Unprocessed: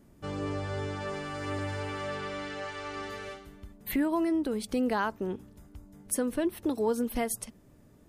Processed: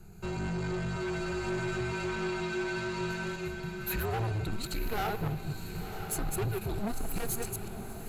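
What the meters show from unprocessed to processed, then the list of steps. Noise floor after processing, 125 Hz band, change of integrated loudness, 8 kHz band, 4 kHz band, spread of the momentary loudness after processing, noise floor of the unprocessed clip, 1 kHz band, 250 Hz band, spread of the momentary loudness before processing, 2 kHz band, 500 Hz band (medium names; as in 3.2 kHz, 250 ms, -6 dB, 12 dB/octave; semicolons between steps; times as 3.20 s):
-42 dBFS, +6.0 dB, -2.0 dB, -1.0 dB, +1.5 dB, 5 LU, -58 dBFS, -1.5 dB, -5.0 dB, 15 LU, +2.0 dB, -2.5 dB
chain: chunks repeated in reverse 120 ms, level -5.5 dB; rippled EQ curve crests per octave 1.4, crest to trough 13 dB; in parallel at -1 dB: compression, threshold -38 dBFS, peak gain reduction 16 dB; on the sum: frequency shift -220 Hz; saturation -29.5 dBFS, distortion -8 dB; on a send: echo that smears into a reverb 1025 ms, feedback 57%, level -8 dB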